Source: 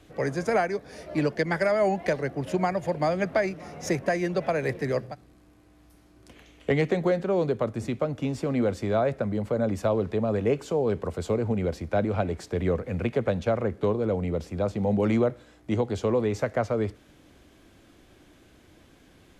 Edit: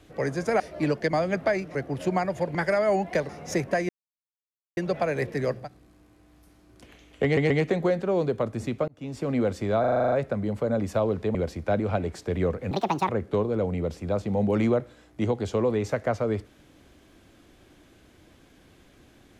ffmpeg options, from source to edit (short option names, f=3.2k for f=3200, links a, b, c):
-filter_complex "[0:a]asplit=21[a][b][c][d][e][f][g][h][i][j][k][l][m][n][o][p][q][r][s][t][u];[a]atrim=end=0.602[v];[b]atrim=start=0.948:end=1.482[w];[c]atrim=start=3.018:end=3.642[x];[d]atrim=start=2.218:end=3.022[y];[e]atrim=start=1.478:end=2.222[z];[f]atrim=start=3.638:end=4.24,asetpts=PTS-STARTPTS,afade=t=out:st=0.598:d=0.004:c=hsin,apad=pad_dur=0.88[aa];[g]atrim=start=4.24:end=6.842,asetpts=PTS-STARTPTS,afade=t=in:d=0.004:c=hsin[ab];[h]atrim=start=6.708:end=6.842[ac];[i]atrim=start=6.708:end=8.09,asetpts=PTS-STARTPTS,afade=t=out:st=1.378:d=0.004:c=hsin[ad];[j]atrim=start=8.09:end=9.052,asetpts=PTS-STARTPTS,afade=t=in:d=0.41[ae];[k]atrim=start=9.008:end=9.052[af];[l]atrim=start=9.008:end=9.052[ag];[m]atrim=start=9.008:end=9.052[ah];[n]atrim=start=9.008:end=9.052[ai];[o]atrim=start=9.008:end=9.052[aj];[p]atrim=start=9.008:end=9.052[ak];[q]atrim=start=9.008:end=9.052[al];[r]atrim=start=9.008:end=10.242[am];[s]atrim=start=11.598:end=12.964[an];[t]atrim=start=12.96:end=13.59,asetpts=PTS-STARTPTS,asetrate=72765,aresample=44100,atrim=end_sample=16838,asetpts=PTS-STARTPTS[ao];[u]atrim=start=13.586[ap];[v][w]acrossfade=d=0.004:c1=hsin:c2=hsin[aq];[aq][x]acrossfade=d=0.004:c1=hsin:c2=hsin[ar];[ar][y]acrossfade=d=0.004:c1=hsin:c2=hsin[as];[as][z]acrossfade=d=0.004:c1=hsin:c2=hsin[at];[aa][ab]concat=n=2:v=0:a=1[au];[at][au]acrossfade=d=0.004:c1=hsin:c2=hsin[av];[av][ac]acrossfade=d=0.004:c1=hsin:c2=hsin[aw];[ad][ae]concat=n=2:v=0:a=1[ax];[aw][ax]acrossfade=d=0.004:c1=hsin:c2=hsin[ay];[ay][af]acrossfade=d=0.004:c1=hsin:c2=hsin[az];[az][ag]acrossfade=d=0.004:c1=hsin:c2=hsin[ba];[ba][ah]acrossfade=d=0.004:c1=hsin:c2=hsin[bb];[bb][ai]acrossfade=d=0.004:c1=hsin:c2=hsin[bc];[bc][aj]acrossfade=d=0.004:c1=hsin:c2=hsin[bd];[bd][ak]acrossfade=d=0.004:c1=hsin:c2=hsin[be];[be][al]acrossfade=d=0.004:c1=hsin:c2=hsin[bf];[bf][am]acrossfade=d=0.004:c1=hsin:c2=hsin[bg];[bg][an]acrossfade=d=0.004:c1=hsin:c2=hsin[bh];[bh][ao]acrossfade=d=0.004:c1=hsin:c2=hsin[bi];[bi][ap]acrossfade=d=0.004:c1=hsin:c2=hsin"